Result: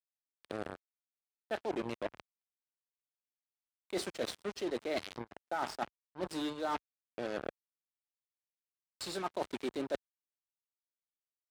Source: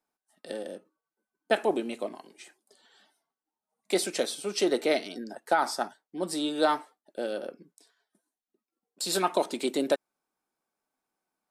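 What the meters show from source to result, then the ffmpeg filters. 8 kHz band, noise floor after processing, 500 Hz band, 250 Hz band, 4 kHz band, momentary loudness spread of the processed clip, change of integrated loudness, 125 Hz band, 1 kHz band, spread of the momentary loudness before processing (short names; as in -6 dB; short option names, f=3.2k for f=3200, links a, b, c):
-14.0 dB, under -85 dBFS, -10.0 dB, -8.5 dB, -10.5 dB, 9 LU, -10.0 dB, -3.5 dB, -9.5 dB, 13 LU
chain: -af "lowpass=12k,aeval=exprs='val(0)+0.001*(sin(2*PI*60*n/s)+sin(2*PI*2*60*n/s)/2+sin(2*PI*3*60*n/s)/3+sin(2*PI*4*60*n/s)/4+sin(2*PI*5*60*n/s)/5)':c=same,acrusher=bits=4:mix=0:aa=0.5,aemphasis=mode=reproduction:type=50kf,areverse,acompressor=threshold=-35dB:ratio=6,areverse,highpass=55,volume=1.5dB"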